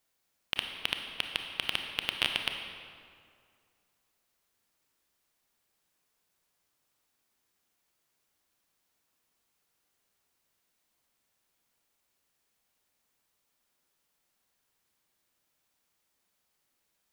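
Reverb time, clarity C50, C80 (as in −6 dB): 2.2 s, 5.0 dB, 6.0 dB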